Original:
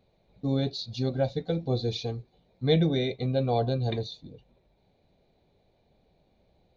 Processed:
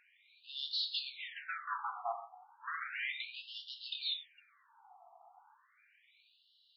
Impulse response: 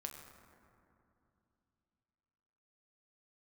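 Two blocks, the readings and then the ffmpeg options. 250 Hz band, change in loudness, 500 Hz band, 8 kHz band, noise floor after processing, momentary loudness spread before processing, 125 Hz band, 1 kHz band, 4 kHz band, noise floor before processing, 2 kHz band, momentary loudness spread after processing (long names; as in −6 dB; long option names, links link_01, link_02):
below −40 dB, −10.5 dB, −25.0 dB, can't be measured, −71 dBFS, 11 LU, below −40 dB, −4.5 dB, −1.5 dB, −68 dBFS, +3.0 dB, 11 LU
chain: -filter_complex "[0:a]asplit=2[link_01][link_02];[link_02]highpass=frequency=720:poles=1,volume=33dB,asoftclip=type=tanh:threshold=-11dB[link_03];[link_01][link_03]amix=inputs=2:normalize=0,lowpass=frequency=1200:poles=1,volume=-6dB[link_04];[1:a]atrim=start_sample=2205,atrim=end_sample=6174[link_05];[link_04][link_05]afir=irnorm=-1:irlink=0,afftfilt=real='re*between(b*sr/1024,940*pow(4000/940,0.5+0.5*sin(2*PI*0.34*pts/sr))/1.41,940*pow(4000/940,0.5+0.5*sin(2*PI*0.34*pts/sr))*1.41)':imag='im*between(b*sr/1024,940*pow(4000/940,0.5+0.5*sin(2*PI*0.34*pts/sr))/1.41,940*pow(4000/940,0.5+0.5*sin(2*PI*0.34*pts/sr))*1.41)':win_size=1024:overlap=0.75,volume=-1dB"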